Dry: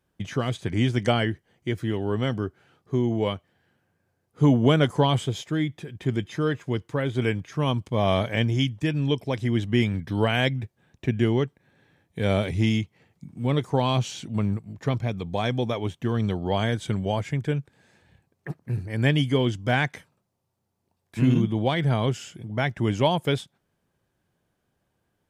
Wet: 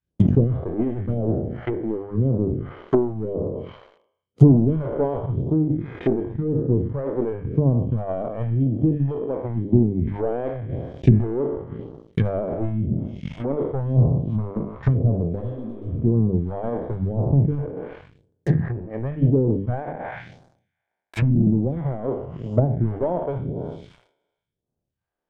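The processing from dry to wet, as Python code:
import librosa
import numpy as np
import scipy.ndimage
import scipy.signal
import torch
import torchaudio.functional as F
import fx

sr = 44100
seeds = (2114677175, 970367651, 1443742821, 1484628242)

y = fx.spec_trails(x, sr, decay_s=1.44)
y = fx.hum_notches(y, sr, base_hz=50, count=6)
y = fx.rider(y, sr, range_db=4, speed_s=2.0)
y = fx.peak_eq(y, sr, hz=630.0, db=2.5, octaves=1.0)
y = fx.leveller(y, sr, passes=3)
y = fx.high_shelf(y, sr, hz=2700.0, db=-11.5)
y = fx.env_lowpass_down(y, sr, base_hz=440.0, full_db=-11.5)
y = fx.transient(y, sr, attack_db=10, sustain_db=-6)
y = fx.phaser_stages(y, sr, stages=2, low_hz=100.0, high_hz=2100.0, hz=0.94, feedback_pct=35)
y = fx.spec_repair(y, sr, seeds[0], start_s=15.42, length_s=0.55, low_hz=260.0, high_hz=2600.0, source='both')
y = fx.sustainer(y, sr, db_per_s=96.0)
y = y * 10.0 ** (-7.0 / 20.0)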